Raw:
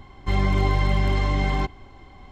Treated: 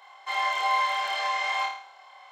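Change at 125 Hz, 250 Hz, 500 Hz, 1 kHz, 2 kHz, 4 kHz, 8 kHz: under -40 dB, under -35 dB, -9.0 dB, +4.5 dB, +3.0 dB, +4.0 dB, n/a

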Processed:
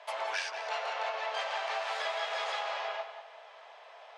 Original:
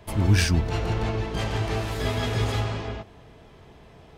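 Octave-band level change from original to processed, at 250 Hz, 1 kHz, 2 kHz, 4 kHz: under -40 dB, 0.0 dB, -2.5 dB, -4.5 dB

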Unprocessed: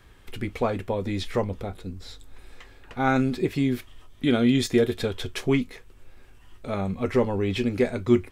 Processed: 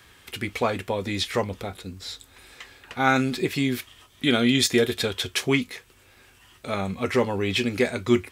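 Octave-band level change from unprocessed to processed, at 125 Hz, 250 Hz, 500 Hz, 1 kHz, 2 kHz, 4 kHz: -2.0, -1.0, 0.0, +2.5, +6.0, +8.5 dB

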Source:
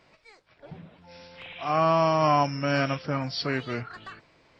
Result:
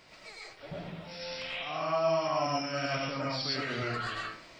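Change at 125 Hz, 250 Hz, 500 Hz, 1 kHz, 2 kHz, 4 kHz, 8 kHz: -9.0 dB, -8.0 dB, -5.0 dB, -8.0 dB, -3.0 dB, 0.0 dB, n/a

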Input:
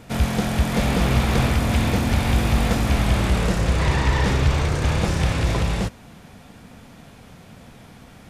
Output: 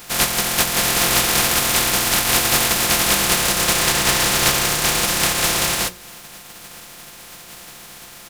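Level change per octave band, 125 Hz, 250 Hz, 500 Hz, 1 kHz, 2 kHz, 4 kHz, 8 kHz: -10.5, -5.0, +1.0, +4.5, +7.5, +12.5, +18.5 dB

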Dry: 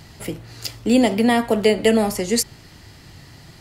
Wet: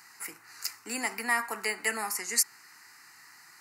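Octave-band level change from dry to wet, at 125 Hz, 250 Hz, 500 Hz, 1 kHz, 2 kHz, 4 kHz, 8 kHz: under -25 dB, -25.5 dB, -22.0 dB, -9.0 dB, -2.5 dB, -10.0 dB, -2.0 dB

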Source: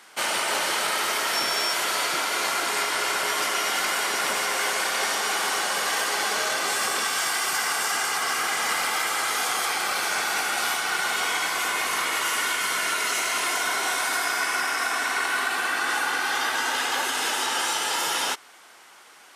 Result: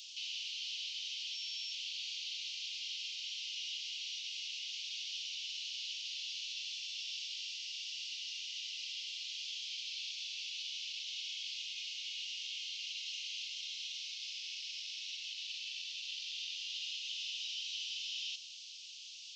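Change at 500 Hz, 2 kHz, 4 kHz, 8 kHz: under -40 dB, -23.5 dB, -10.0 dB, -20.5 dB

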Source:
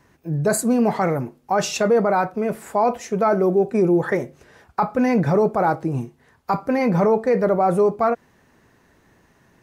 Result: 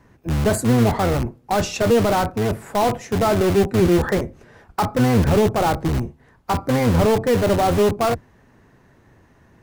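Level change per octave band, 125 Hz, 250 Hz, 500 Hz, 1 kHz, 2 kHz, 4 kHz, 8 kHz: +6.0, +1.5, 0.0, -0.5, +1.5, +7.0, +0.5 dB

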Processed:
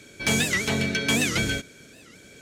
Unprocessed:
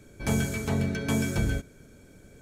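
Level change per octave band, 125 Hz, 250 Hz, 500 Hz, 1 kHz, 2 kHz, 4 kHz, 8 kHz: -2.5, +1.0, +2.5, +4.0, +11.0, +14.0, +9.5 dB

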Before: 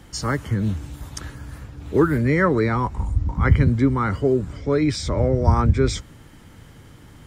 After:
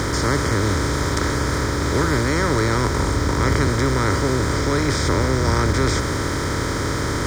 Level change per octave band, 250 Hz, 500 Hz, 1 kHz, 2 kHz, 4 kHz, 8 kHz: +0.5, +1.0, +4.0, +6.5, +9.5, +11.0 dB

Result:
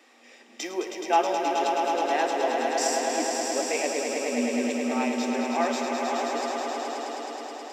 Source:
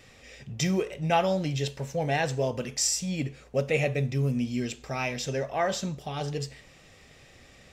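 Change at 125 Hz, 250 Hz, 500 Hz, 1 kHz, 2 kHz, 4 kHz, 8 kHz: under -25 dB, +2.5 dB, +3.0 dB, +7.5 dB, +2.5 dB, +1.0 dB, +1.0 dB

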